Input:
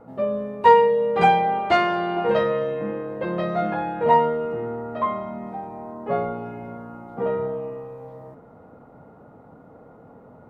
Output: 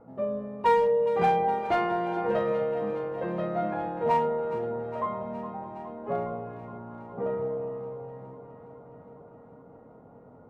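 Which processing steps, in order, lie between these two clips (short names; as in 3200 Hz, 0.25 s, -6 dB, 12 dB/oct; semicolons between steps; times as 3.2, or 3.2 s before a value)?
high shelf 2300 Hz -11.5 dB; in parallel at -8.5 dB: wavefolder -14.5 dBFS; on the sum: echo with dull and thin repeats by turns 0.207 s, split 880 Hz, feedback 85%, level -11.5 dB; gain -8 dB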